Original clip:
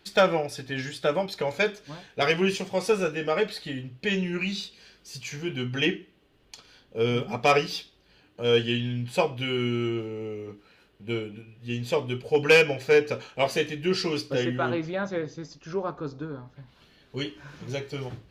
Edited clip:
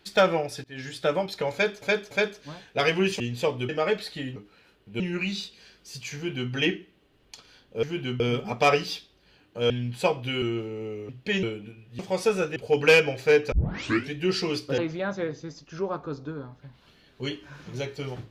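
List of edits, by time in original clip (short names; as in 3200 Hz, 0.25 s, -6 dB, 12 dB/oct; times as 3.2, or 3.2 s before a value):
0.64–0.96 fade in, from -23 dB
1.53–1.82 loop, 3 plays
2.62–3.19 swap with 11.69–12.18
3.86–4.2 swap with 10.49–11.13
5.35–5.72 copy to 7.03
8.53–8.84 cut
9.56–9.82 cut
13.14 tape start 0.61 s
14.4–14.72 cut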